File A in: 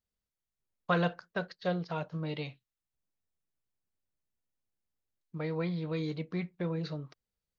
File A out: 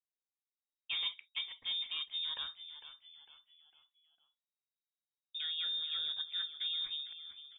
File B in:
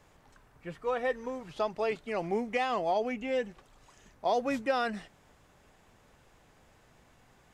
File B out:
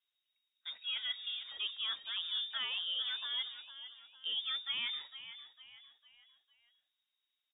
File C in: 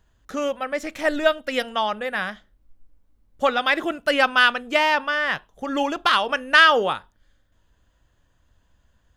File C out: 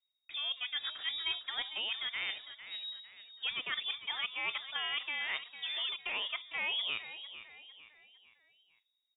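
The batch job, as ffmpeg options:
-filter_complex "[0:a]agate=range=-24dB:threshold=-52dB:ratio=16:detection=peak,areverse,acompressor=threshold=-30dB:ratio=6,areverse,lowshelf=frequency=110:gain=7,asplit=5[link_01][link_02][link_03][link_04][link_05];[link_02]adelay=453,afreqshift=64,volume=-12.5dB[link_06];[link_03]adelay=906,afreqshift=128,volume=-20dB[link_07];[link_04]adelay=1359,afreqshift=192,volume=-27.6dB[link_08];[link_05]adelay=1812,afreqshift=256,volume=-35.1dB[link_09];[link_01][link_06][link_07][link_08][link_09]amix=inputs=5:normalize=0,lowpass=frequency=3200:width_type=q:width=0.5098,lowpass=frequency=3200:width_type=q:width=0.6013,lowpass=frequency=3200:width_type=q:width=0.9,lowpass=frequency=3200:width_type=q:width=2.563,afreqshift=-3800,volume=-4.5dB"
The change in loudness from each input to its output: −1.5, −4.5, −15.0 LU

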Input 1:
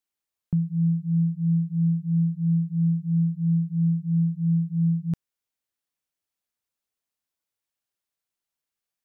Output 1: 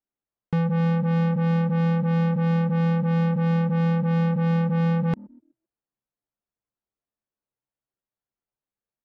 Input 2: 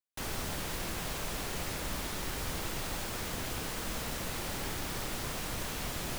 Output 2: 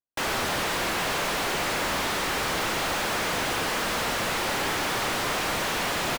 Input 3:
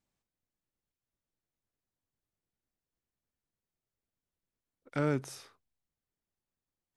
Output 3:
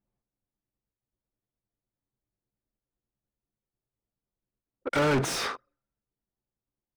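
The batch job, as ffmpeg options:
-filter_complex "[0:a]asplit=2[link_01][link_02];[link_02]highpass=frequency=720:poles=1,volume=41dB,asoftclip=type=tanh:threshold=-16.5dB[link_03];[link_01][link_03]amix=inputs=2:normalize=0,lowpass=frequency=2200:poles=1,volume=-6dB,asplit=5[link_04][link_05][link_06][link_07][link_08];[link_05]adelay=128,afreqshift=39,volume=-20dB[link_09];[link_06]adelay=256,afreqshift=78,volume=-25.2dB[link_10];[link_07]adelay=384,afreqshift=117,volume=-30.4dB[link_11];[link_08]adelay=512,afreqshift=156,volume=-35.6dB[link_12];[link_04][link_09][link_10][link_11][link_12]amix=inputs=5:normalize=0,anlmdn=1"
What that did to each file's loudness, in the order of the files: +2.0, +10.5, +6.5 LU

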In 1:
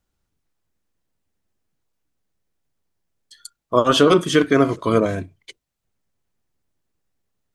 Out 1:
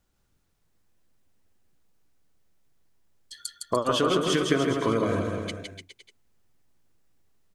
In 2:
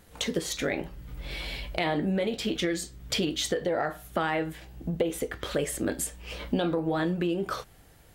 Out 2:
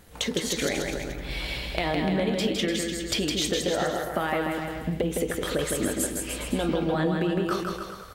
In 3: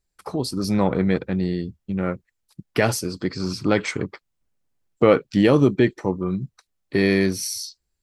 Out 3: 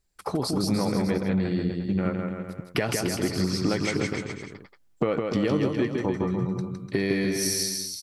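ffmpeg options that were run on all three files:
-filter_complex "[0:a]acompressor=threshold=-26dB:ratio=6,asplit=2[link_01][link_02];[link_02]aecho=0:1:160|296|411.6|509.9|593.4:0.631|0.398|0.251|0.158|0.1[link_03];[link_01][link_03]amix=inputs=2:normalize=0,volume=3dB"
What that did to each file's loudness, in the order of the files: −8.0, +2.5, −4.5 LU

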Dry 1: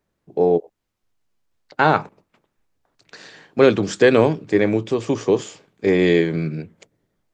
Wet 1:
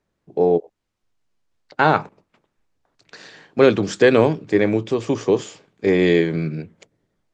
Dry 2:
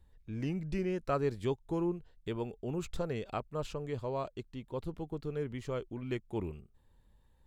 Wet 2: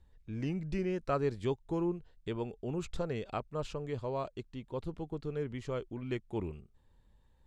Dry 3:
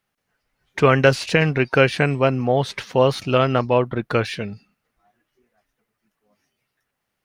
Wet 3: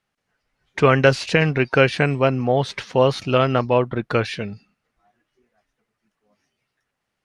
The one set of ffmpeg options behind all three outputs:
-af "lowpass=8700"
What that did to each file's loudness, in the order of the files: 0.0, 0.0, 0.0 LU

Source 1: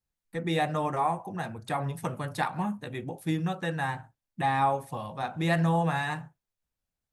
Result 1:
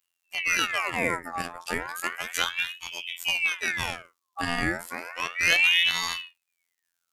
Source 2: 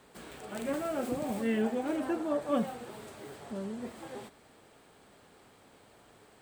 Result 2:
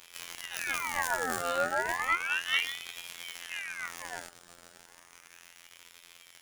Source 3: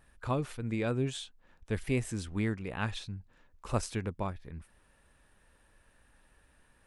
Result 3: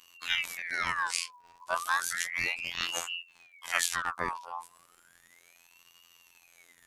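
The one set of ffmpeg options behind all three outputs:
-af "highshelf=frequency=3400:width_type=q:width=1.5:gain=8.5,afftfilt=real='hypot(re,im)*cos(PI*b)':imag='0':win_size=2048:overlap=0.75,aeval=exprs='val(0)*sin(2*PI*1900*n/s+1900*0.5/0.33*sin(2*PI*0.33*n/s))':channel_layout=same,volume=8dB"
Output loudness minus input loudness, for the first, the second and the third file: +4.5, +2.0, +3.5 LU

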